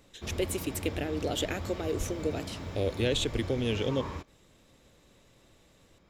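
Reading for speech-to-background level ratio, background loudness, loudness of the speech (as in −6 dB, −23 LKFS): 7.5 dB, −40.0 LKFS, −32.5 LKFS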